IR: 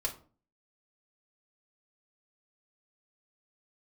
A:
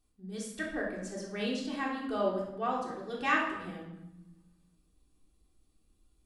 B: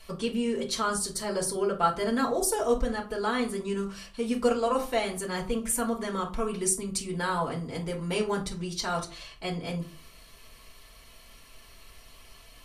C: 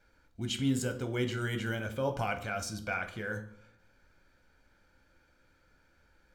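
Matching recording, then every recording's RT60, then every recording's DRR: B; 0.95, 0.40, 0.65 s; -4.0, -2.0, 6.5 dB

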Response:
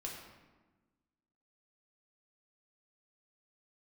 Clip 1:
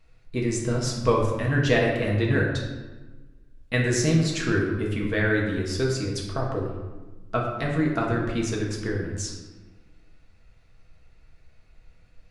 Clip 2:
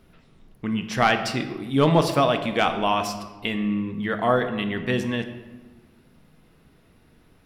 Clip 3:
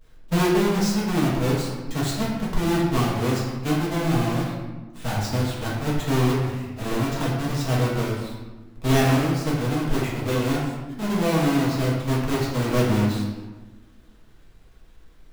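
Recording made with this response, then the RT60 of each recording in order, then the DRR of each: 1; 1.2, 1.3, 1.2 s; -2.5, 6.5, -6.5 dB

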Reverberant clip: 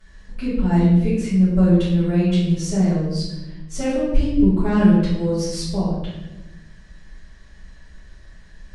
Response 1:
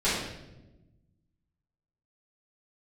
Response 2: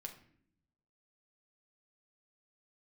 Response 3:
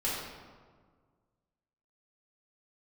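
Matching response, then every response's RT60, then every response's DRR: 1; 1.0, 0.65, 1.7 s; -13.0, 2.5, -8.5 dB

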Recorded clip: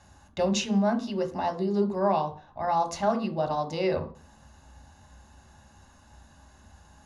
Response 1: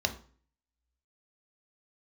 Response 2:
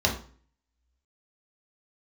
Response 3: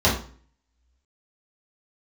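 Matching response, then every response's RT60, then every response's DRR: 1; 0.45, 0.45, 0.45 s; 6.0, -1.0, -7.5 dB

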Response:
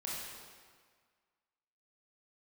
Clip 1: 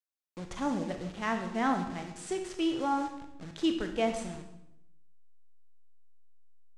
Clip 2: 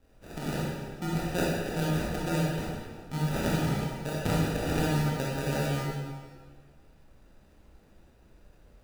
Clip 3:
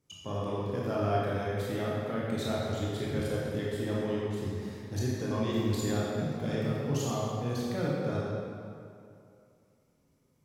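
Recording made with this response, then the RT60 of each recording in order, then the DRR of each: 2; 0.80, 1.7, 2.5 s; 5.5, -6.0, -6.5 dB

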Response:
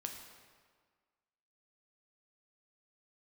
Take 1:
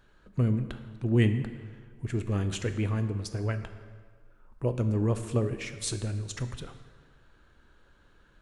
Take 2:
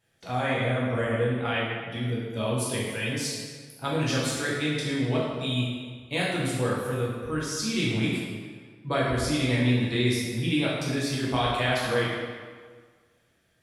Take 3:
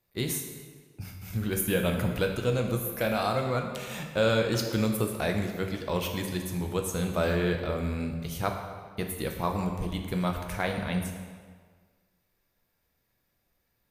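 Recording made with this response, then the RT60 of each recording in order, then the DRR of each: 3; 1.7, 1.7, 1.7 s; 8.5, -6.5, 3.0 dB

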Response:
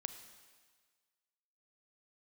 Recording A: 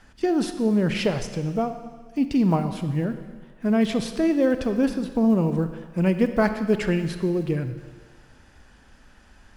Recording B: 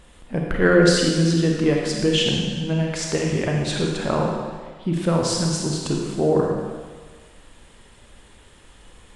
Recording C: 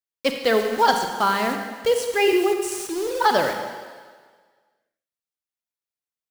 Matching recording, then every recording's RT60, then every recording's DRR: A; 1.6, 1.6, 1.6 s; 9.0, -0.5, 4.5 dB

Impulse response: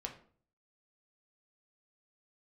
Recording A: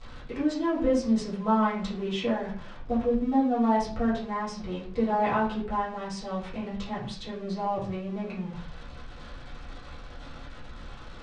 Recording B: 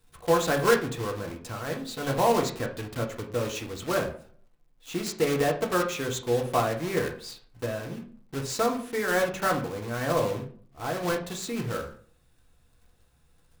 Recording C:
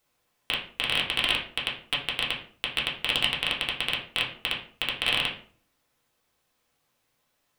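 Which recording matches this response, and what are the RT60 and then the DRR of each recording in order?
B; 0.50, 0.50, 0.50 s; -10.0, 1.5, -4.0 dB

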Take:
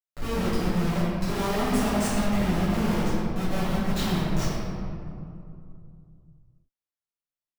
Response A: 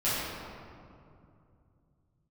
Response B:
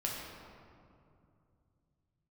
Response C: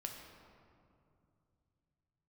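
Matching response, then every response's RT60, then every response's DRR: A; 2.5, 2.5, 2.6 s; -13.0, -3.5, 1.5 dB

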